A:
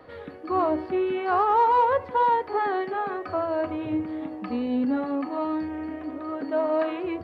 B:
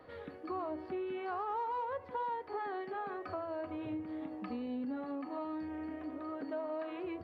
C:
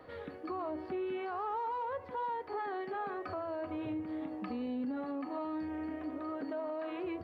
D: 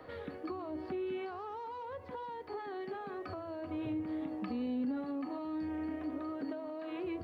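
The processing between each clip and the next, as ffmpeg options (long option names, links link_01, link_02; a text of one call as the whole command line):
ffmpeg -i in.wav -af "acompressor=threshold=-31dB:ratio=3,volume=-7dB" out.wav
ffmpeg -i in.wav -af "alimiter=level_in=9dB:limit=-24dB:level=0:latency=1:release=19,volume=-9dB,volume=2.5dB" out.wav
ffmpeg -i in.wav -filter_complex "[0:a]acrossover=split=350|3000[link_01][link_02][link_03];[link_02]acompressor=threshold=-46dB:ratio=6[link_04];[link_01][link_04][link_03]amix=inputs=3:normalize=0,volume=2.5dB" out.wav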